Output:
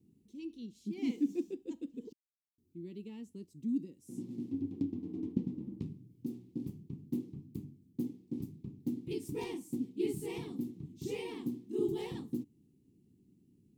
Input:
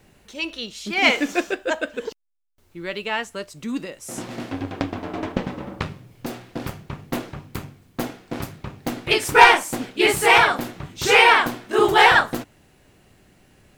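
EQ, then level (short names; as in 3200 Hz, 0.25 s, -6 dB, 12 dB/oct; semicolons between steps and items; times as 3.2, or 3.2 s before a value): HPF 200 Hz 6 dB/oct; inverse Chebyshev low-pass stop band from 570 Hz, stop band 40 dB; tilt +3.5 dB/oct; +5.0 dB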